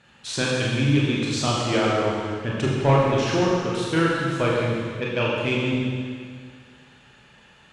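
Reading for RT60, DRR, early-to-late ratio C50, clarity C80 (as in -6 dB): 2.0 s, -5.0 dB, -1.0 dB, 0.0 dB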